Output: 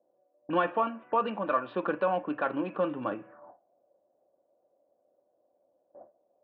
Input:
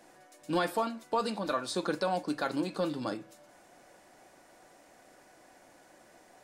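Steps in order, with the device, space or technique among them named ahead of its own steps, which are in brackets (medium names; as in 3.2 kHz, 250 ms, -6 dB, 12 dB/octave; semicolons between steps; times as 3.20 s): local Wiener filter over 9 samples; gate with hold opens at -47 dBFS; envelope filter bass rig (touch-sensitive low-pass 560–2900 Hz up, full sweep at -35.5 dBFS; cabinet simulation 78–2300 Hz, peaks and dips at 150 Hz -4 dB, 560 Hz +4 dB, 1.1 kHz +6 dB); band-stop 2.1 kHz, Q 6.3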